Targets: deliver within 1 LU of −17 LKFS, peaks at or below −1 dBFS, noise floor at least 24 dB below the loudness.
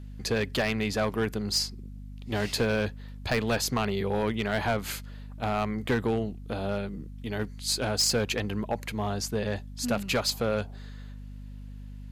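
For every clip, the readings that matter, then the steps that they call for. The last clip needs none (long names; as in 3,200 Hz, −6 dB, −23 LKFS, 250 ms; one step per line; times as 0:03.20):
share of clipped samples 0.7%; peaks flattened at −19.0 dBFS; mains hum 50 Hz; hum harmonics up to 250 Hz; level of the hum −39 dBFS; integrated loudness −29.0 LKFS; sample peak −19.0 dBFS; target loudness −17.0 LKFS
→ clipped peaks rebuilt −19 dBFS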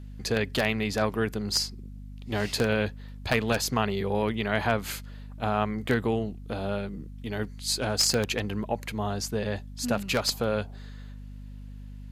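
share of clipped samples 0.0%; mains hum 50 Hz; hum harmonics up to 250 Hz; level of the hum −39 dBFS
→ hum removal 50 Hz, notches 5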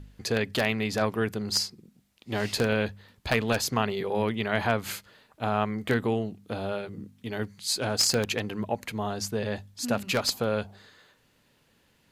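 mains hum none found; integrated loudness −28.5 LKFS; sample peak −9.5 dBFS; target loudness −17.0 LKFS
→ level +11.5 dB
brickwall limiter −1 dBFS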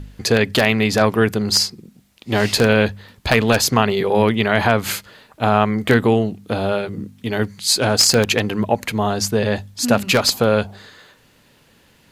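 integrated loudness −17.5 LKFS; sample peak −1.0 dBFS; background noise floor −55 dBFS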